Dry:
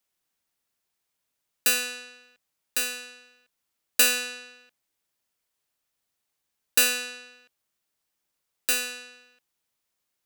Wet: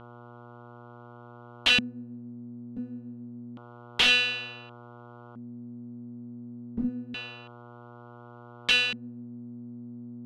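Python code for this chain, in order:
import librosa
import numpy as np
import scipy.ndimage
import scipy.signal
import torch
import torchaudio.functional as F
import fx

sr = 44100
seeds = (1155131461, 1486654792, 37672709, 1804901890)

y = fx.dmg_buzz(x, sr, base_hz=120.0, harmonics=12, level_db=-48.0, tilt_db=-3, odd_only=False)
y = (np.mod(10.0 ** (15.0 / 20.0) * y + 1.0, 2.0) - 1.0) / 10.0 ** (15.0 / 20.0)
y = fx.filter_lfo_lowpass(y, sr, shape='square', hz=0.28, low_hz=230.0, high_hz=3200.0, q=5.5)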